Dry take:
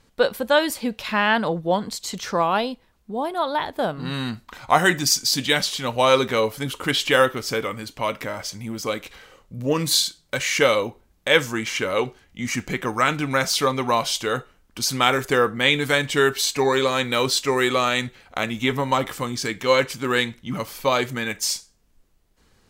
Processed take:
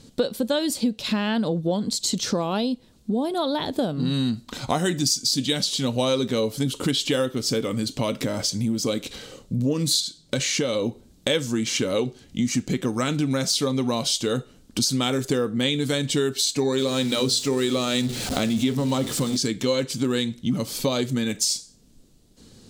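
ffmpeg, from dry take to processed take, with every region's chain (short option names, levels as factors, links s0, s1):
-filter_complex "[0:a]asettb=1/sr,asplit=3[s0][s1][s2];[s0]atrim=end=10.004[s3];[s1]atrim=start=10:end=10.86,asetpts=PTS-STARTPTS,afade=t=in:d=0.004:c=qsin,afade=t=out:st=0.856:d=0.004:c=qsin,highshelf=f=9900:g=-9,acompressor=threshold=0.0794:ratio=2.5:attack=3.2:release=140:knee=1:detection=peak[s4];[s2]atrim=start=10.856[s5];[s3][s4]acrossfade=d=0.004:c1=hsin:c2=qsin[s6];[s6][s5]acrossfade=d=0.004:c1=qsin:c2=hsin,asettb=1/sr,asplit=3[s7][s8][s9];[s7]atrim=end=16.784[s10];[s8]atrim=start=16.78:end=19.37,asetpts=PTS-STARTPTS,afade=t=in:d=0.004:c=qsin,afade=t=out:st=2.586:d=0.004:c=qsin,aeval=exprs='val(0)+0.5*0.0376*sgn(val(0))':c=same,bandreject=f=60:t=h:w=6,bandreject=f=120:t=h:w=6,bandreject=f=180:t=h:w=6,bandreject=f=240:t=h:w=6,bandreject=f=300:t=h:w=6,bandreject=f=360:t=h:w=6,bandreject=f=420:t=h:w=6,bandreject=f=480:t=h:w=6[s11];[s9]atrim=start=19.366[s12];[s10][s11]acrossfade=d=0.004:c1=hsin:c2=qsin[s13];[s13][s12]acrossfade=d=0.004:c1=qsin:c2=hsin,equalizer=f=125:t=o:w=1:g=8,equalizer=f=250:t=o:w=1:g=11,equalizer=f=500:t=o:w=1:g=4,equalizer=f=1000:t=o:w=1:g=-4,equalizer=f=2000:t=o:w=1:g=-5,equalizer=f=4000:t=o:w=1:g=8,equalizer=f=8000:t=o:w=1:g=8,acompressor=threshold=0.0501:ratio=4,volume=1.5"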